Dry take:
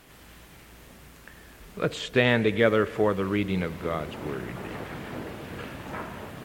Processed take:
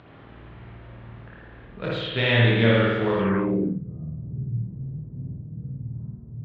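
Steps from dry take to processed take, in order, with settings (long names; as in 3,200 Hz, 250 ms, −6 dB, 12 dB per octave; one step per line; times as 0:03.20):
gain on one half-wave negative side −3 dB
low-pass that shuts in the quiet parts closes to 1,200 Hz, open at −22 dBFS
multi-voice chorus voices 6, 0.8 Hz, delay 28 ms, depth 3 ms
upward compression, threshold −42 dBFS
high-pass filter 61 Hz
parametric band 120 Hz +13.5 dB 0.3 octaves
spring reverb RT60 1.1 s, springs 52 ms, chirp 35 ms, DRR −4 dB
low-pass filter sweep 3,800 Hz → 140 Hz, 0:03.18–0:03.83
level −1.5 dB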